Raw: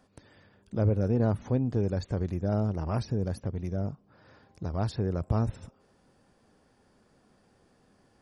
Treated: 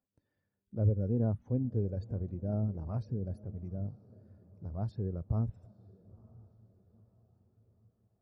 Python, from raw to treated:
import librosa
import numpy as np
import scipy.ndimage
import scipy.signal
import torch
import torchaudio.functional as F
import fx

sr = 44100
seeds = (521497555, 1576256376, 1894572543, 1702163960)

y = fx.echo_diffused(x, sr, ms=942, feedback_pct=57, wet_db=-14.5)
y = fx.spectral_expand(y, sr, expansion=1.5)
y = y * 10.0 ** (-3.0 / 20.0)